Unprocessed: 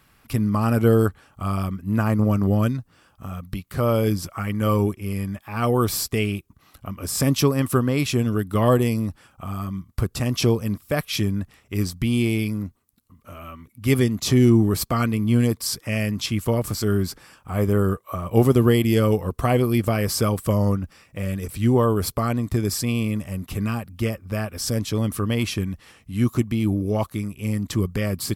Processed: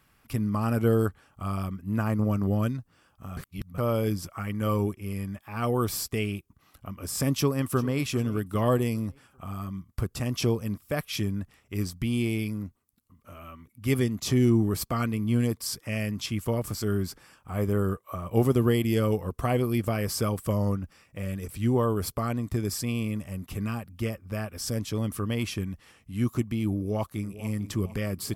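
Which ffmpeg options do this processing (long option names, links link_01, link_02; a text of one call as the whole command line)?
ffmpeg -i in.wav -filter_complex "[0:a]asplit=2[link_01][link_02];[link_02]afade=type=in:start_time=7.36:duration=0.01,afade=type=out:start_time=7.99:duration=0.01,aecho=0:1:400|800|1200|1600:0.133352|0.0600085|0.0270038|0.0121517[link_03];[link_01][link_03]amix=inputs=2:normalize=0,asplit=2[link_04][link_05];[link_05]afade=type=in:start_time=26.7:duration=0.01,afade=type=out:start_time=27.49:duration=0.01,aecho=0:1:450|900|1350|1800|2250:0.177828|0.088914|0.044457|0.0222285|0.0111142[link_06];[link_04][link_06]amix=inputs=2:normalize=0,asplit=3[link_07][link_08][link_09];[link_07]atrim=end=3.372[link_10];[link_08]atrim=start=3.368:end=3.782,asetpts=PTS-STARTPTS,areverse[link_11];[link_09]atrim=start=3.778[link_12];[link_10][link_11]acrossfade=duration=0.004:curve1=hsin:curve2=hsin[link_13];[link_13][link_12]acrossfade=duration=0.004:curve1=hsin:curve2=hsin,equalizer=frequency=4000:width_type=o:width=0.25:gain=-3,volume=-6dB" out.wav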